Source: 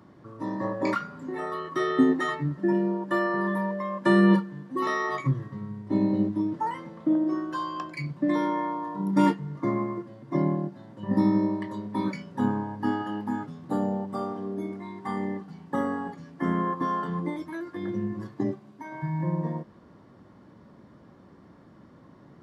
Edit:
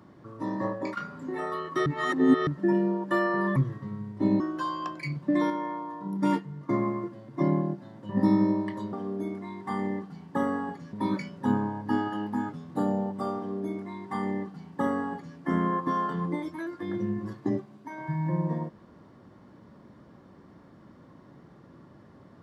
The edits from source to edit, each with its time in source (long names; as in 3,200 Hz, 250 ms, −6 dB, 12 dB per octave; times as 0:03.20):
0:00.66–0:00.97: fade out, to −14.5 dB
0:01.86–0:02.47: reverse
0:03.56–0:05.26: remove
0:06.10–0:07.34: remove
0:08.44–0:09.63: clip gain −4.5 dB
0:14.31–0:16.31: duplicate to 0:11.87